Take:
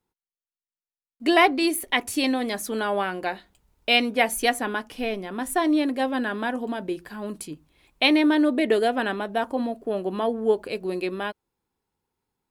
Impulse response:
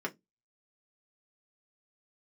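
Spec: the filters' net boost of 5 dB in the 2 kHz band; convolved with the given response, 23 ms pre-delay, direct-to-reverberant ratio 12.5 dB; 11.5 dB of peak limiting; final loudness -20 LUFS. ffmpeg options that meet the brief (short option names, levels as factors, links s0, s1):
-filter_complex "[0:a]equalizer=f=2000:t=o:g=6,alimiter=limit=0.211:level=0:latency=1,asplit=2[s0][s1];[1:a]atrim=start_sample=2205,adelay=23[s2];[s1][s2]afir=irnorm=-1:irlink=0,volume=0.141[s3];[s0][s3]amix=inputs=2:normalize=0,volume=1.78"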